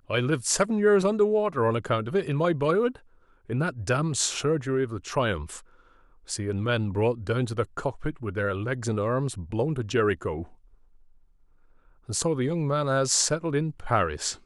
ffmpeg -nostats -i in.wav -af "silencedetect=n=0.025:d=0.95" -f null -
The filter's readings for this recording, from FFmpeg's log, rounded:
silence_start: 10.43
silence_end: 12.09 | silence_duration: 1.66